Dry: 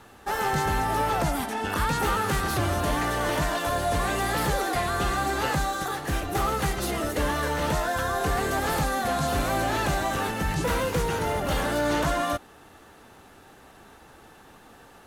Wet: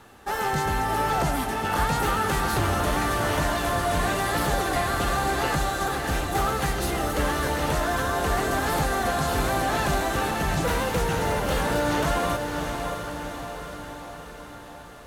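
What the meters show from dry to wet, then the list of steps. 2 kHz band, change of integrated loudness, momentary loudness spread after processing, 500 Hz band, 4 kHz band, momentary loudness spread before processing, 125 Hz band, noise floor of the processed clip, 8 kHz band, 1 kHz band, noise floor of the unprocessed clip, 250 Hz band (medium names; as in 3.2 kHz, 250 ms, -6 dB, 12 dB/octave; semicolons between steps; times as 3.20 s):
+1.5 dB, +1.0 dB, 10 LU, +1.5 dB, +1.5 dB, 3 LU, +1.5 dB, -42 dBFS, +1.5 dB, +1.5 dB, -52 dBFS, +1.5 dB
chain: echo that smears into a reverb 624 ms, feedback 59%, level -5.5 dB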